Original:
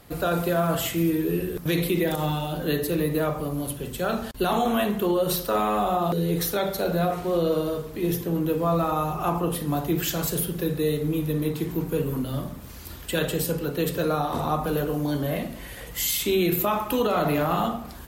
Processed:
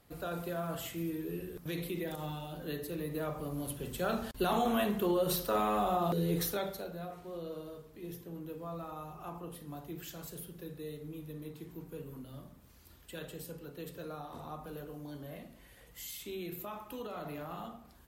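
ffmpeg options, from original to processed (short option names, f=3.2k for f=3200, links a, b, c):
-af "volume=-7dB,afade=t=in:st=3.03:d=0.93:silence=0.446684,afade=t=out:st=6.4:d=0.5:silence=0.251189"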